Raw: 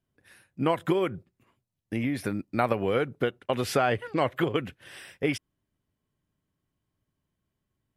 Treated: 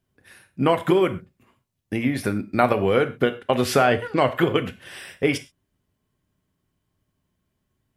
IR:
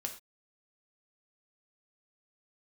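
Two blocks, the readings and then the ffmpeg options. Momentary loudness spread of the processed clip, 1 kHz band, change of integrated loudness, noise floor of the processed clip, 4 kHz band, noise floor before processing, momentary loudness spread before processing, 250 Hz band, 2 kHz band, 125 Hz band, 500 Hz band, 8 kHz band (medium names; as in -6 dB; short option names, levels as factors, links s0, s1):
12 LU, +6.5 dB, +6.5 dB, -77 dBFS, +6.5 dB, -83 dBFS, 11 LU, +6.0 dB, +6.5 dB, +5.5 dB, +6.5 dB, +6.5 dB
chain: -filter_complex "[0:a]asplit=2[s0][s1];[1:a]atrim=start_sample=2205[s2];[s1][s2]afir=irnorm=-1:irlink=0,volume=1.26[s3];[s0][s3]amix=inputs=2:normalize=0"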